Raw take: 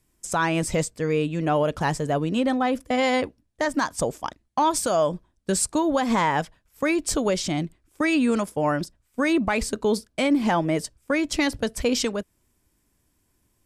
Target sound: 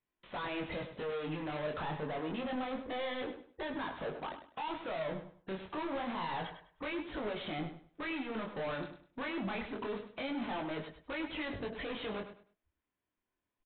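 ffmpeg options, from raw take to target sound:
ffmpeg -i in.wav -filter_complex "[0:a]afftdn=noise_reduction=33:noise_floor=-46,alimiter=level_in=0.5dB:limit=-24dB:level=0:latency=1:release=58,volume=-0.5dB,acompressor=threshold=-40dB:ratio=12,asplit=2[link_01][link_02];[link_02]highpass=frequency=720:poles=1,volume=26dB,asoftclip=type=tanh:threshold=-27.5dB[link_03];[link_01][link_03]amix=inputs=2:normalize=0,lowpass=frequency=2300:poles=1,volume=-6dB,aresample=8000,asoftclip=type=hard:threshold=-37.5dB,aresample=44100,flanger=delay=19:depth=7.5:speed=0.27,asplit=2[link_04][link_05];[link_05]aecho=0:1:101|202|303:0.299|0.0716|0.0172[link_06];[link_04][link_06]amix=inputs=2:normalize=0,volume=4dB" out.wav

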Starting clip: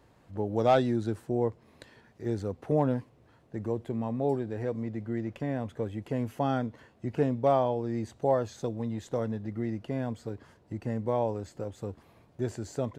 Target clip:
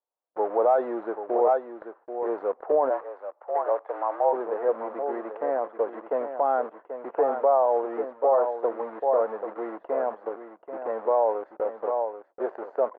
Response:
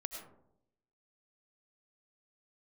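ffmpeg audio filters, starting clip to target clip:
-filter_complex "[0:a]asplit=2[link_01][link_02];[link_02]acrusher=bits=5:mix=0:aa=0.000001,volume=-6dB[link_03];[link_01][link_03]amix=inputs=2:normalize=0,highpass=frequency=500:width=0.5412,highpass=frequency=500:width=1.3066,agate=range=-37dB:threshold=-51dB:ratio=16:detection=peak,crystalizer=i=2.5:c=0,asplit=2[link_04][link_05];[link_05]aecho=0:1:785:0.335[link_06];[link_04][link_06]amix=inputs=2:normalize=0,alimiter=limit=-20dB:level=0:latency=1:release=32,lowpass=frequency=1200:width=0.5412,lowpass=frequency=1200:width=1.3066,asplit=3[link_07][link_08][link_09];[link_07]afade=type=out:start_time=2.89:duration=0.02[link_10];[link_08]afreqshift=89,afade=type=in:start_time=2.89:duration=0.02,afade=type=out:start_time=4.32:duration=0.02[link_11];[link_09]afade=type=in:start_time=4.32:duration=0.02[link_12];[link_10][link_11][link_12]amix=inputs=3:normalize=0,volume=9dB"

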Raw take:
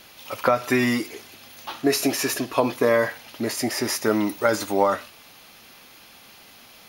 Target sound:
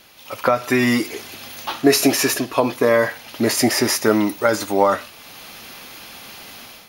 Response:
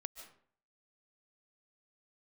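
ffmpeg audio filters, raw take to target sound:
-af "dynaudnorm=framelen=120:gausssize=5:maxgain=11dB,volume=-1dB"

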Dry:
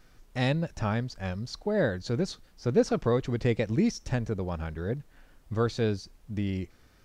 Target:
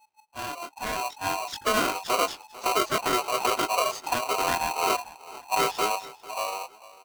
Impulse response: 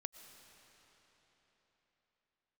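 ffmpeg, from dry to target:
-filter_complex "[0:a]flanger=delay=19.5:depth=4:speed=0.53,alimiter=level_in=0.5dB:limit=-24dB:level=0:latency=1:release=367,volume=-0.5dB,dynaudnorm=framelen=210:gausssize=11:maxgain=10dB,afftdn=noise_reduction=22:noise_floor=-39,asplit=4[link_01][link_02][link_03][link_04];[link_02]asetrate=22050,aresample=44100,atempo=2,volume=-13dB[link_05];[link_03]asetrate=37084,aresample=44100,atempo=1.18921,volume=-13dB[link_06];[link_04]asetrate=55563,aresample=44100,atempo=0.793701,volume=-15dB[link_07];[link_01][link_05][link_06][link_07]amix=inputs=4:normalize=0,asplit=2[link_08][link_09];[link_09]aecho=0:1:446|892|1338:0.112|0.0348|0.0108[link_10];[link_08][link_10]amix=inputs=2:normalize=0,aeval=exprs='val(0)*sgn(sin(2*PI*860*n/s))':channel_layout=same,volume=-1dB"

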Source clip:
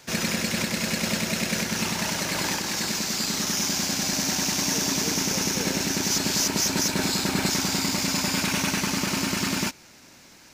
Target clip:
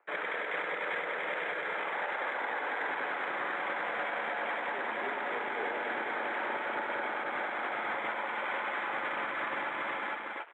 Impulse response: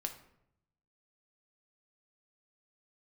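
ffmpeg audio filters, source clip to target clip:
-filter_complex "[0:a]dynaudnorm=framelen=250:gausssize=5:maxgain=11dB,asplit=2[link_01][link_02];[link_02]aecho=0:1:454:0.376[link_03];[link_01][link_03]amix=inputs=2:normalize=0,asettb=1/sr,asplit=3[link_04][link_05][link_06];[link_04]atrim=end=7.194[link_07];[link_05]atrim=start=7.19:end=8.02,asetpts=PTS-STARTPTS,afade=type=in:duration=0.004:curve=qsin,afade=type=out:start_time=0.826:duration=0.004:curve=qsin,asoftclip=type=hard:threshold=-13.5dB[link_08];[link_06]atrim=start=8.016[link_09];[link_07][link_08]acrossfade=duration=0.004:curve1=hsin:curve2=qsin[link_10];[link_10][link_09]acrossfade=duration=0.004:curve1=qsin:curve2=hsin,asplit=2[link_11][link_12];[link_12]aecho=0:1:47|51|115|277:0.188|0.251|0.168|0.473[link_13];[link_11][link_13]amix=inputs=2:normalize=0,acompressor=threshold=-22dB:ratio=1.5,highpass=frequency=500:width_type=q:width=0.5412,highpass=frequency=500:width_type=q:width=1.307,lowpass=frequency=2200:width_type=q:width=0.5176,lowpass=frequency=2200:width_type=q:width=0.7071,lowpass=frequency=2200:width_type=q:width=1.932,afreqshift=-50,alimiter=level_in=0.5dB:limit=-24dB:level=0:latency=1:release=197,volume=-0.5dB,afwtdn=0.00631" -ar 48000 -c:a libmp3lame -b:a 48k

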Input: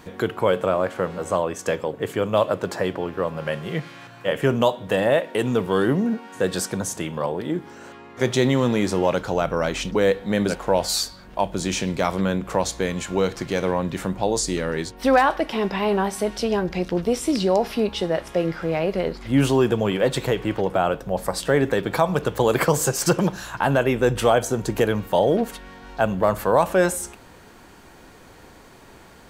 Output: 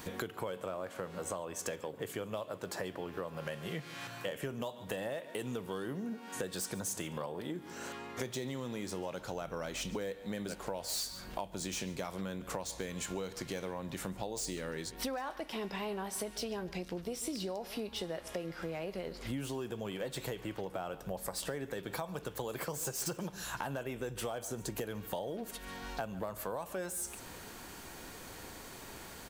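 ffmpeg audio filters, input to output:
ffmpeg -i in.wav -filter_complex "[0:a]highshelf=frequency=2900:gain=7.5,acrossover=split=1100[link_01][link_02];[link_02]asoftclip=type=tanh:threshold=-20dB[link_03];[link_01][link_03]amix=inputs=2:normalize=0,aecho=1:1:142:0.1,acompressor=threshold=-33dB:ratio=10,highshelf=frequency=11000:gain=6,volume=-3dB" out.wav

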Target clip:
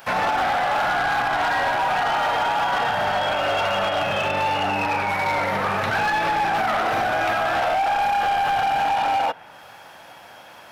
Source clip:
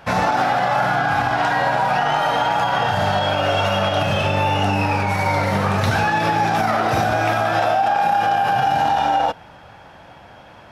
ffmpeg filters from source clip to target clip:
ffmpeg -i in.wav -filter_complex "[0:a]aemphasis=mode=production:type=riaa,acrossover=split=2800[link_01][link_02];[link_01]asoftclip=type=hard:threshold=-18dB[link_03];[link_02]acompressor=threshold=-52dB:ratio=6[link_04];[link_03][link_04]amix=inputs=2:normalize=0" out.wav

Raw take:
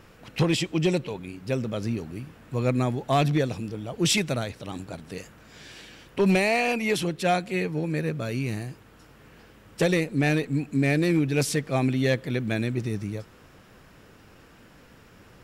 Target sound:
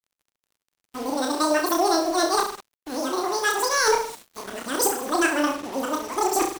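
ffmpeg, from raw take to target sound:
ffmpeg -i in.wav -af "areverse,asetrate=103194,aresample=44100,equalizer=frequency=8400:width=3.6:gain=4,aecho=1:1:30|64.5|104.2|149.8|202.3:0.631|0.398|0.251|0.158|0.1,acrusher=bits=5:mix=0:aa=0.5" out.wav

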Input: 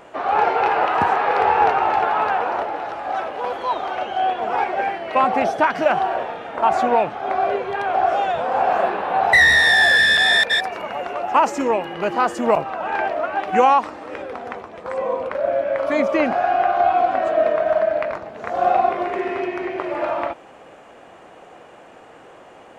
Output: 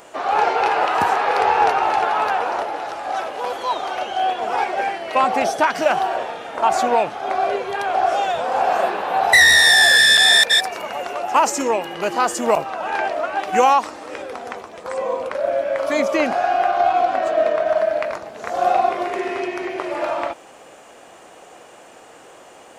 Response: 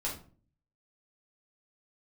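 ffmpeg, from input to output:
-filter_complex "[0:a]bass=frequency=250:gain=-4,treble=frequency=4000:gain=14,asettb=1/sr,asplit=3[link_01][link_02][link_03];[link_01]atrim=end=16.714[link_04];[link_02]atrim=start=16.71:end=17.77,asetpts=PTS-STARTPTS,afade=type=in:duration=0.004:curve=qsin,afade=type=out:start_time=1.056:duration=0.004:curve=qsin,adynamicsmooth=sensitivity=5:basefreq=5700[link_05];[link_03]atrim=start=17.766[link_06];[link_04][link_05]acrossfade=duration=0.004:curve1=hsin:curve2=qsin[link_07];[link_07][link_06]acrossfade=duration=0.004:curve1=qsin:curve2=hsin"

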